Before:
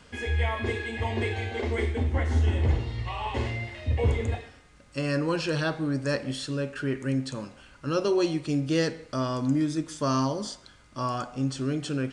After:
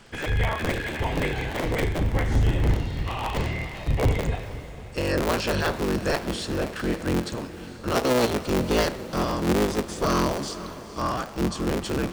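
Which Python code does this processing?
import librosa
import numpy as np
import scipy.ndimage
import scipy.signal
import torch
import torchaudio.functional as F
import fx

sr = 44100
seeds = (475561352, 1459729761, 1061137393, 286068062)

y = fx.cycle_switch(x, sr, every=3, mode='inverted')
y = fx.echo_diffused(y, sr, ms=471, feedback_pct=51, wet_db=-14.0)
y = y * 10.0 ** (2.5 / 20.0)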